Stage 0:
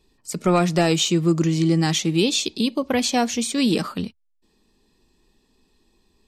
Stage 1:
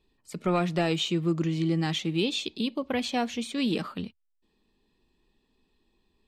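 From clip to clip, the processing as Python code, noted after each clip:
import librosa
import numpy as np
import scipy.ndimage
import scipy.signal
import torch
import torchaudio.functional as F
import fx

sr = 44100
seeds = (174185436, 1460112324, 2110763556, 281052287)

y = fx.high_shelf_res(x, sr, hz=4400.0, db=-7.0, q=1.5)
y = F.gain(torch.from_numpy(y), -7.5).numpy()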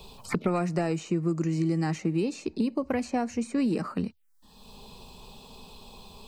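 y = fx.env_phaser(x, sr, low_hz=300.0, high_hz=3400.0, full_db=-32.0)
y = fx.band_squash(y, sr, depth_pct=100)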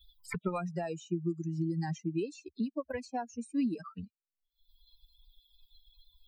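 y = fx.bin_expand(x, sr, power=3.0)
y = F.gain(torch.from_numpy(y), -1.5).numpy()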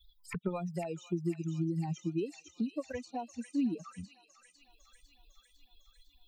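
y = fx.env_flanger(x, sr, rest_ms=3.6, full_db=-31.5)
y = fx.echo_wet_highpass(y, sr, ms=503, feedback_pct=64, hz=2400.0, wet_db=-3.5)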